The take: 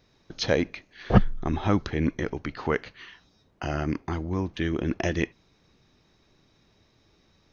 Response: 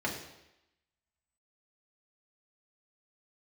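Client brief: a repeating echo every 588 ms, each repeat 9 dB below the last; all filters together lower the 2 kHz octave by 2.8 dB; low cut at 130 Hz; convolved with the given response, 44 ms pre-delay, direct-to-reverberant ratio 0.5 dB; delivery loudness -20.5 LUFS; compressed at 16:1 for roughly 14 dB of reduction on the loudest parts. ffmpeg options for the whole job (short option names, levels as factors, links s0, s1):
-filter_complex "[0:a]highpass=130,equalizer=f=2000:t=o:g=-3.5,acompressor=threshold=0.0501:ratio=16,aecho=1:1:588|1176|1764|2352:0.355|0.124|0.0435|0.0152,asplit=2[s0][s1];[1:a]atrim=start_sample=2205,adelay=44[s2];[s1][s2]afir=irnorm=-1:irlink=0,volume=0.422[s3];[s0][s3]amix=inputs=2:normalize=0,volume=3.16"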